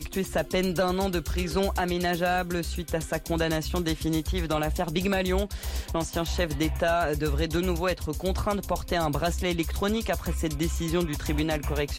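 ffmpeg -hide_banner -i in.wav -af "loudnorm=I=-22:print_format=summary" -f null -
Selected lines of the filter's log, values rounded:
Input Integrated:    -27.8 LUFS
Input True Peak:     -14.1 dBTP
Input LRA:             0.7 LU
Input Threshold:     -37.8 LUFS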